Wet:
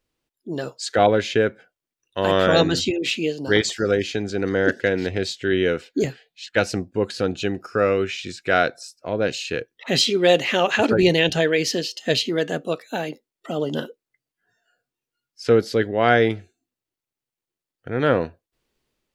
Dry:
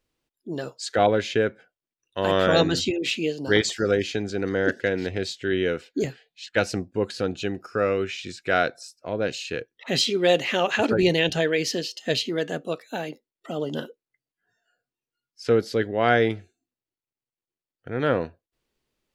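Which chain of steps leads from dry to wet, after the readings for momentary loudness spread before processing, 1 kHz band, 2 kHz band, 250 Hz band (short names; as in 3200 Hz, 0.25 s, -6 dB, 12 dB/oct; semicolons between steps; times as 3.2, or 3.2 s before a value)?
13 LU, +3.0 dB, +3.0 dB, +3.0 dB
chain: AGC gain up to 4 dB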